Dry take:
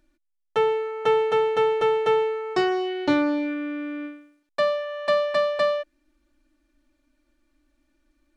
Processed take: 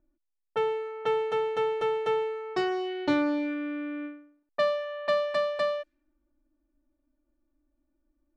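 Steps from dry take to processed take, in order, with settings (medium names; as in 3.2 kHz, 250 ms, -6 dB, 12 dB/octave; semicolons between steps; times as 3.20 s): level-controlled noise filter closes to 840 Hz, open at -22 dBFS; gain riding within 4 dB 2 s; trim -5.5 dB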